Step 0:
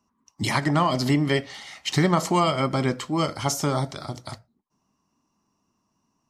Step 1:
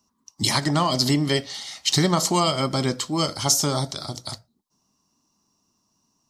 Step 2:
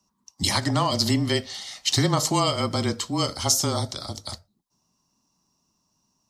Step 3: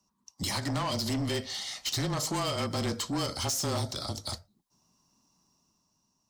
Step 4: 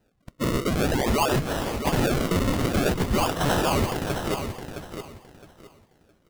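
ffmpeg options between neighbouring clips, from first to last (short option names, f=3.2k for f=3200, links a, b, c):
-af "highshelf=f=3.1k:t=q:w=1.5:g=8"
-af "afreqshift=-24,volume=-1.5dB"
-af "dynaudnorm=f=120:g=13:m=5dB,alimiter=limit=-11dB:level=0:latency=1:release=238,asoftclip=type=tanh:threshold=-23dB,volume=-3.5dB"
-af "afftfilt=real='real(if(lt(b,272),68*(eq(floor(b/68),0)*1+eq(floor(b/68),1)*2+eq(floor(b/68),2)*3+eq(floor(b/68),3)*0)+mod(b,68),b),0)':imag='imag(if(lt(b,272),68*(eq(floor(b/68),0)*1+eq(floor(b/68),1)*2+eq(floor(b/68),2)*3+eq(floor(b/68),3)*0)+mod(b,68),b),0)':win_size=2048:overlap=0.75,acrusher=samples=37:mix=1:aa=0.000001:lfo=1:lforange=37:lforate=0.5,aecho=1:1:664|1328|1992:0.398|0.0955|0.0229,volume=7.5dB"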